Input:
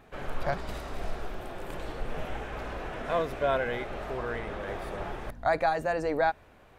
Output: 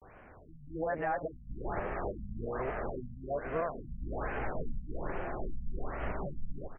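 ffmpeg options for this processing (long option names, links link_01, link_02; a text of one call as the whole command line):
ffmpeg -i in.wav -filter_complex "[0:a]areverse,highshelf=frequency=3000:width_type=q:width=1.5:gain=-11.5,alimiter=level_in=1.5dB:limit=-24dB:level=0:latency=1:release=351,volume=-1.5dB,asplit=2[link_01][link_02];[link_02]aecho=0:1:284:0.251[link_03];[link_01][link_03]amix=inputs=2:normalize=0,afftfilt=real='re*lt(b*sr/1024,230*pow(3300/230,0.5+0.5*sin(2*PI*1.2*pts/sr)))':imag='im*lt(b*sr/1024,230*pow(3300/230,0.5+0.5*sin(2*PI*1.2*pts/sr)))':win_size=1024:overlap=0.75,volume=1.5dB" out.wav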